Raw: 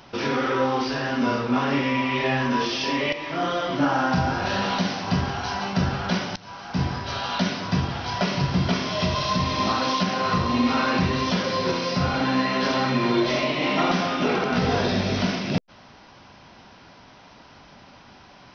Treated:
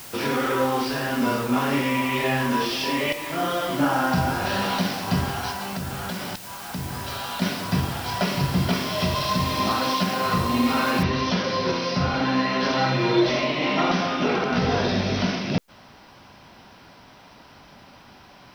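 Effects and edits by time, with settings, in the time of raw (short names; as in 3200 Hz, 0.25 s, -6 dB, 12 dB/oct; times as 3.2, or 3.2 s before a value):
5.5–7.42 compressor 5:1, threshold -27 dBFS
11.03 noise floor step -41 dB -69 dB
12.77–13.3 comb 6.2 ms, depth 71%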